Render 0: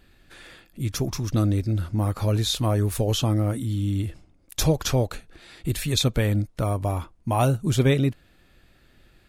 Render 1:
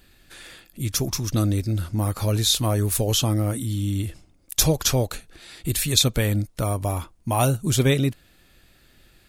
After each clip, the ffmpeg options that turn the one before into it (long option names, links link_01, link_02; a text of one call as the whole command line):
ffmpeg -i in.wav -af "highshelf=frequency=4000:gain=10.5" out.wav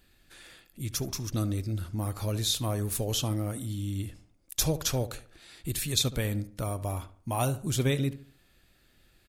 ffmpeg -i in.wav -filter_complex "[0:a]asplit=2[link_01][link_02];[link_02]adelay=72,lowpass=frequency=2400:poles=1,volume=-15dB,asplit=2[link_03][link_04];[link_04]adelay=72,lowpass=frequency=2400:poles=1,volume=0.41,asplit=2[link_05][link_06];[link_06]adelay=72,lowpass=frequency=2400:poles=1,volume=0.41,asplit=2[link_07][link_08];[link_08]adelay=72,lowpass=frequency=2400:poles=1,volume=0.41[link_09];[link_01][link_03][link_05][link_07][link_09]amix=inputs=5:normalize=0,volume=-8dB" out.wav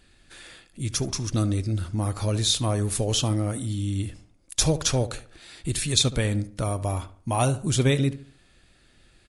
ffmpeg -i in.wav -af "volume=6dB" -ar 24000 -c:a libmp3lame -b:a 80k out.mp3